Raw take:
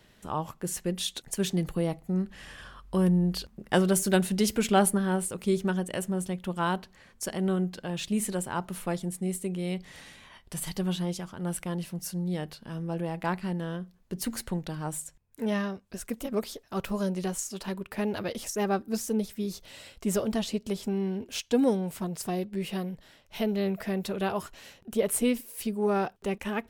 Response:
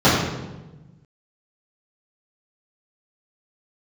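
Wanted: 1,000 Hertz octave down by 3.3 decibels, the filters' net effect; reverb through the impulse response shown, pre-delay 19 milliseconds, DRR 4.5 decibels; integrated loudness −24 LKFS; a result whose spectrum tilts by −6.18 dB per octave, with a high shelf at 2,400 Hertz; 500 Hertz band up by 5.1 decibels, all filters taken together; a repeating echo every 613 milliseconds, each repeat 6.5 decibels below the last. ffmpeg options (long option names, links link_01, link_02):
-filter_complex "[0:a]equalizer=frequency=500:width_type=o:gain=8.5,equalizer=frequency=1000:width_type=o:gain=-7.5,highshelf=frequency=2400:gain=-8,aecho=1:1:613|1226|1839|2452|3065|3678:0.473|0.222|0.105|0.0491|0.0231|0.0109,asplit=2[link_01][link_02];[1:a]atrim=start_sample=2205,adelay=19[link_03];[link_02][link_03]afir=irnorm=-1:irlink=0,volume=-30dB[link_04];[link_01][link_04]amix=inputs=2:normalize=0"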